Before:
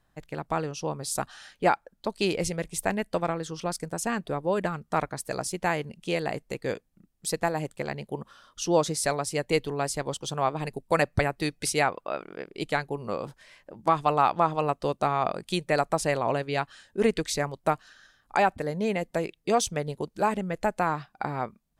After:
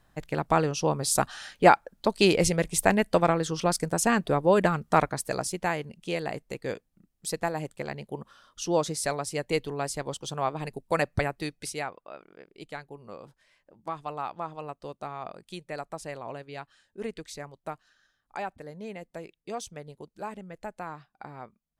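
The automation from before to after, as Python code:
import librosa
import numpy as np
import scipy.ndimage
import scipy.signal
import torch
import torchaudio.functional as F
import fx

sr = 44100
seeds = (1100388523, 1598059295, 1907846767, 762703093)

y = fx.gain(x, sr, db=fx.line((4.91, 5.5), (5.78, -2.5), (11.27, -2.5), (12.02, -12.0)))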